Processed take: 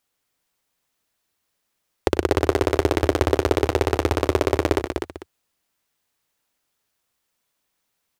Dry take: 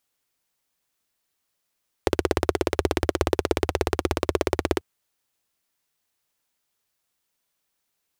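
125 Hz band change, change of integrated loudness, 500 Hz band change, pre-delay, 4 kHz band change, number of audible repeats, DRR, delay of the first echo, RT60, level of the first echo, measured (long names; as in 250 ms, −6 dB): +5.0 dB, +4.0 dB, +4.5 dB, no reverb audible, +2.5 dB, 3, no reverb audible, 98 ms, no reverb audible, −16.0 dB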